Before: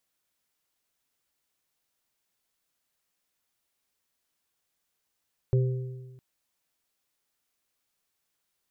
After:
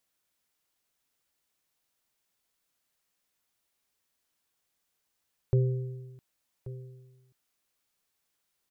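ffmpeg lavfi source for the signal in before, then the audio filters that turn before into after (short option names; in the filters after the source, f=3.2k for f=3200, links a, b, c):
-f lavfi -i "aevalsrc='0.119*pow(10,-3*t/1.32)*sin(2*PI*127*t)+0.0447*pow(10,-3*t/1.2)*sin(2*PI*390*t)+0.0168*pow(10,-3*t/0.92)*sin(2*PI*516*t)':d=0.66:s=44100"
-af "aecho=1:1:1133:0.158"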